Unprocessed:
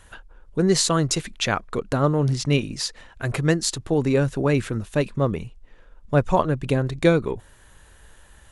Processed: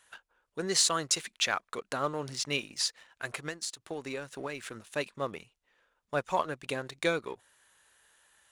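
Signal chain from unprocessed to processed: high-pass 1.3 kHz 6 dB/octave; 3.29–4.80 s: compression 12:1, threshold -31 dBFS, peak gain reduction 11.5 dB; waveshaping leveller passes 1; trim -6 dB

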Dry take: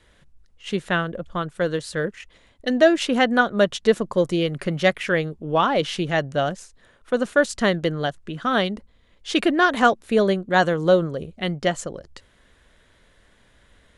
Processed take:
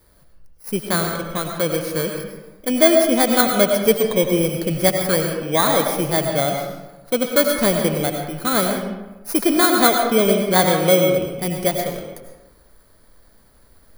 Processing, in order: bit-reversed sample order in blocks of 16 samples; algorithmic reverb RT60 1.1 s, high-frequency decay 0.6×, pre-delay 60 ms, DRR 3 dB; trim +1.5 dB

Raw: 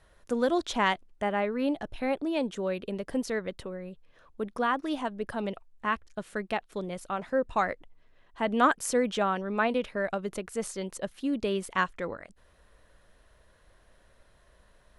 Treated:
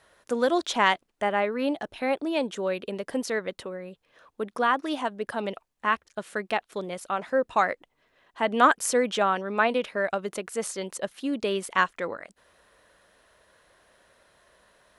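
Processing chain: high-pass 380 Hz 6 dB/octave; trim +5 dB

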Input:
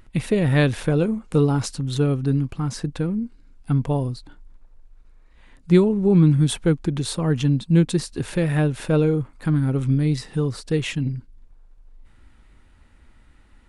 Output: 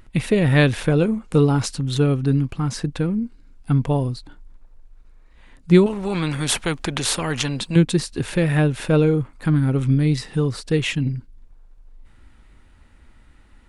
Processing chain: dynamic bell 2.5 kHz, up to +3 dB, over -45 dBFS, Q 0.84; 5.86–7.76 s: spectrum-flattening compressor 2:1; trim +2 dB

